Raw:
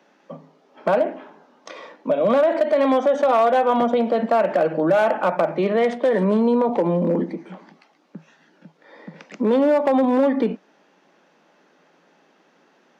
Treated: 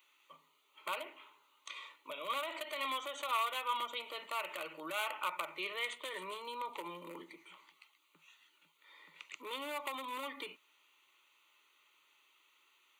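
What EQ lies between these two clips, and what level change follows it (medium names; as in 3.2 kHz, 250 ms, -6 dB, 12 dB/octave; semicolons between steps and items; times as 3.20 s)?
differentiator; peaking EQ 510 Hz -14.5 dB 0.68 oct; static phaser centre 1.1 kHz, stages 8; +7.0 dB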